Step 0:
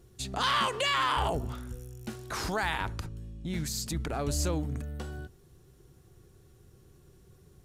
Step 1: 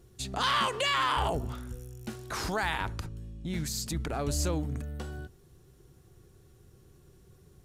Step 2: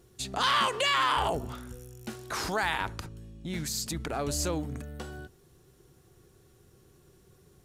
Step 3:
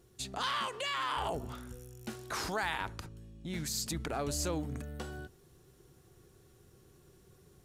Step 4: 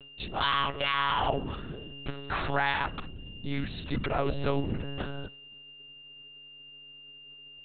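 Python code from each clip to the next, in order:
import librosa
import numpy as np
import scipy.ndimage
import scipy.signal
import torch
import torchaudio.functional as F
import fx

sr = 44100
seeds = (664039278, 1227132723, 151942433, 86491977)

y1 = x
y2 = fx.low_shelf(y1, sr, hz=150.0, db=-8.5)
y2 = F.gain(torch.from_numpy(y2), 2.0).numpy()
y3 = fx.rider(y2, sr, range_db=4, speed_s=0.5)
y3 = F.gain(torch.from_numpy(y3), -5.5).numpy()
y4 = y3 + 10.0 ** (-56.0 / 20.0) * np.sin(2.0 * np.pi * 2800.0 * np.arange(len(y3)) / sr)
y4 = fx.lpc_monotone(y4, sr, seeds[0], pitch_hz=140.0, order=10)
y4 = F.gain(torch.from_numpy(y4), 7.0).numpy()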